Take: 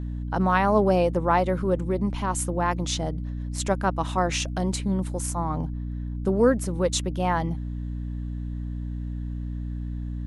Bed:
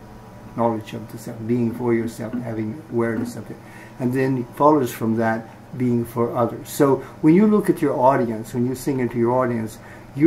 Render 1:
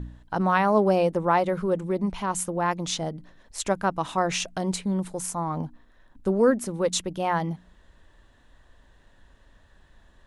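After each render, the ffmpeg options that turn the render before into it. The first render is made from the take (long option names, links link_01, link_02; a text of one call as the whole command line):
ffmpeg -i in.wav -af "bandreject=frequency=60:width_type=h:width=4,bandreject=frequency=120:width_type=h:width=4,bandreject=frequency=180:width_type=h:width=4,bandreject=frequency=240:width_type=h:width=4,bandreject=frequency=300:width_type=h:width=4" out.wav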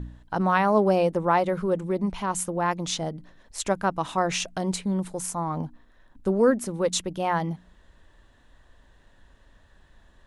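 ffmpeg -i in.wav -af anull out.wav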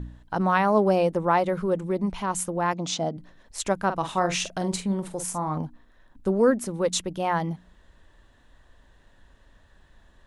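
ffmpeg -i in.wav -filter_complex "[0:a]asettb=1/sr,asplit=3[link_01][link_02][link_03];[link_01]atrim=end=2.734[link_04];[link_02]atrim=start=2.73:end=3.17,asetpts=PTS-STARTPTS,afade=type=in:duration=0.004:curve=qsin,afade=type=out:start_time=0.436:duration=0.004:curve=qsin,highpass=110,equalizer=frequency=250:width_type=q:width=4:gain=8,equalizer=frequency=690:width_type=q:width=4:gain=7,equalizer=frequency=1800:width_type=q:width=4:gain=-5,lowpass=frequency=7900:width=0.5412,lowpass=frequency=7900:width=1.3066[link_05];[link_03]atrim=start=3.166[link_06];[link_04][link_05]acrossfade=duration=0.004:curve1=hsin:curve2=qsin[link_07];[link_07][link_06]acrossfade=duration=0.004:curve1=qsin:curve2=hsin,asettb=1/sr,asplit=3[link_08][link_09][link_10];[link_08]atrim=end=3.854[link_11];[link_09]atrim=start=3.85:end=5.58,asetpts=PTS-STARTPTS,afade=type=in:duration=0.004:curve=qsin,afade=type=out:start_time=1.726:duration=0.004:curve=qsin,asplit=2[link_12][link_13];[link_13]adelay=45,volume=-9dB[link_14];[link_12][link_14]amix=inputs=2:normalize=0,atrim=end_sample=76293[link_15];[link_10]atrim=start=5.576[link_16];[link_11][link_15]acrossfade=duration=0.004:curve1=hsin:curve2=qsin[link_17];[link_17][link_16]acrossfade=duration=0.004:curve1=qsin:curve2=hsin" out.wav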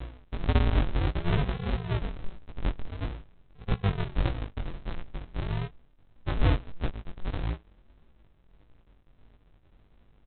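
ffmpeg -i in.wav -af "aresample=8000,acrusher=samples=37:mix=1:aa=0.000001:lfo=1:lforange=22.2:lforate=0.47,aresample=44100,flanger=delay=17:depth=5.7:speed=1.6" out.wav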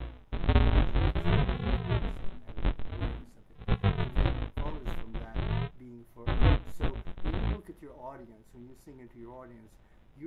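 ffmpeg -i in.wav -i bed.wav -filter_complex "[1:a]volume=-28.5dB[link_01];[0:a][link_01]amix=inputs=2:normalize=0" out.wav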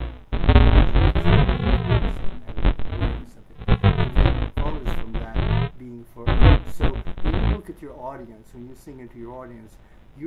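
ffmpeg -i in.wav -af "volume=10dB" out.wav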